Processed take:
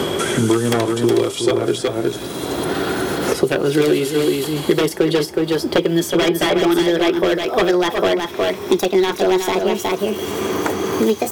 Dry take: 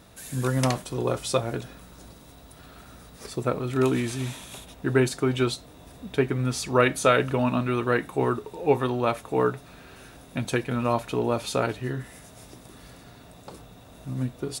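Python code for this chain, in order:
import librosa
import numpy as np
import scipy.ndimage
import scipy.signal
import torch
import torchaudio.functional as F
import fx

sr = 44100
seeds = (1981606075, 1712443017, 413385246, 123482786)

p1 = fx.speed_glide(x, sr, from_pct=85, to_pct=173)
p2 = scipy.signal.sosfilt(scipy.signal.butter(4, 71.0, 'highpass', fs=sr, output='sos'), p1)
p3 = fx.low_shelf(p2, sr, hz=220.0, db=-5.0)
p4 = 10.0 ** (-19.0 / 20.0) * (np.abs((p3 / 10.0 ** (-19.0 / 20.0) + 3.0) % 4.0 - 2.0) - 1.0)
p5 = fx.small_body(p4, sr, hz=(370.0, 3300.0), ring_ms=40, db=14)
p6 = p5 + fx.echo_single(p5, sr, ms=367, db=-6.5, dry=0)
p7 = fx.band_squash(p6, sr, depth_pct=100)
y = F.gain(torch.from_numpy(p7), 5.5).numpy()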